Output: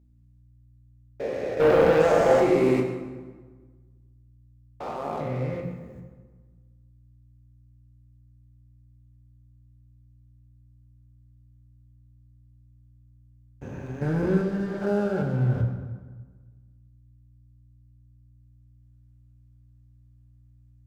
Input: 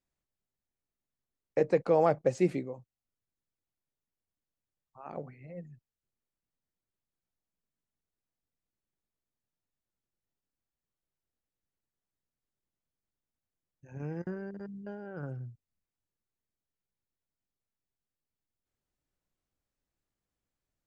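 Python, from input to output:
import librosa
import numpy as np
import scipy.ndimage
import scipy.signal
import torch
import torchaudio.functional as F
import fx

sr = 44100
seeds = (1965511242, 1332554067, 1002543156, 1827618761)

y = fx.spec_steps(x, sr, hold_ms=400)
y = fx.highpass(y, sr, hz=300.0, slope=6, at=(2.07, 5.04))
y = fx.leveller(y, sr, passes=3)
y = fx.add_hum(y, sr, base_hz=60, snr_db=27)
y = fx.rev_fdn(y, sr, rt60_s=1.4, lf_ratio=1.2, hf_ratio=0.7, size_ms=78.0, drr_db=0.5)
y = y * librosa.db_to_amplitude(5.0)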